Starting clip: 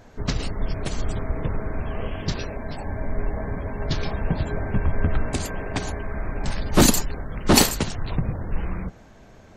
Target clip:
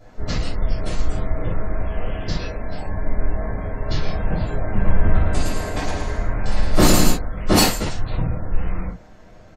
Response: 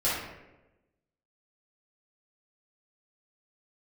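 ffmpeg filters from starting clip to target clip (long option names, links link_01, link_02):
-filter_complex "[0:a]asplit=3[link_01][link_02][link_03];[link_01]afade=type=out:start_time=4.79:duration=0.02[link_04];[link_02]aecho=1:1:110|198|268.4|324.7|369.8:0.631|0.398|0.251|0.158|0.1,afade=type=in:start_time=4.79:duration=0.02,afade=type=out:start_time=7.1:duration=0.02[link_05];[link_03]afade=type=in:start_time=7.1:duration=0.02[link_06];[link_04][link_05][link_06]amix=inputs=3:normalize=0[link_07];[1:a]atrim=start_sample=2205,atrim=end_sample=3528[link_08];[link_07][link_08]afir=irnorm=-1:irlink=0,volume=-8dB"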